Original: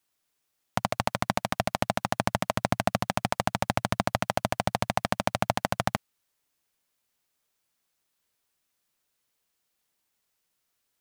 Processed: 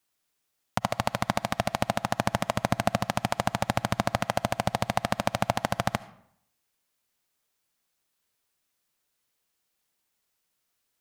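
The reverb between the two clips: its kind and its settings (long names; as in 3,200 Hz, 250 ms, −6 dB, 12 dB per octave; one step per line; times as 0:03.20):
comb and all-pass reverb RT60 0.69 s, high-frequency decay 0.7×, pre-delay 30 ms, DRR 17 dB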